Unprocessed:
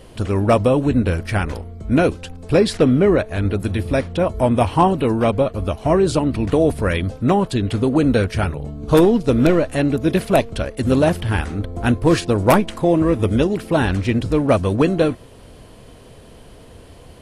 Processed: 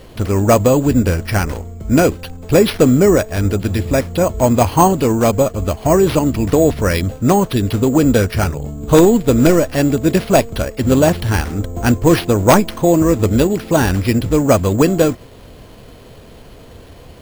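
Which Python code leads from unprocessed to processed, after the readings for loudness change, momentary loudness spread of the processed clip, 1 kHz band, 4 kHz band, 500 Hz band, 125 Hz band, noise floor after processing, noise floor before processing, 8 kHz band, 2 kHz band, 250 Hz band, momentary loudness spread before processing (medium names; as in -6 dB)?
+3.5 dB, 7 LU, +3.5 dB, +3.5 dB, +3.5 dB, +3.5 dB, -40 dBFS, -43 dBFS, +12.0 dB, +3.0 dB, +3.5 dB, 7 LU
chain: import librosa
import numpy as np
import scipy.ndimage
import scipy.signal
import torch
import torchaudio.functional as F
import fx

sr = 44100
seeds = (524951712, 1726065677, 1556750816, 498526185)

y = np.repeat(x[::6], 6)[:len(x)]
y = F.gain(torch.from_numpy(y), 3.5).numpy()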